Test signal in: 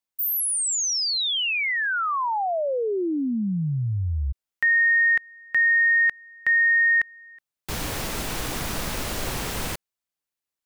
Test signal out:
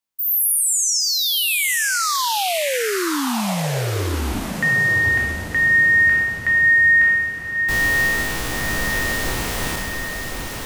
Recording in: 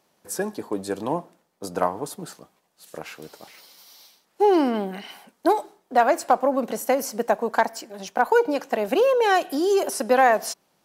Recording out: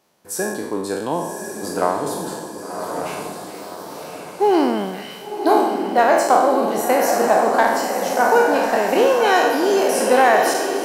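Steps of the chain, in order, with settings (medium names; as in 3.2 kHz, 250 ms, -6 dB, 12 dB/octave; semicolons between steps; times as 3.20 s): spectral sustain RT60 0.93 s; echo that smears into a reverb 1093 ms, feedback 50%, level -5 dB; trim +1 dB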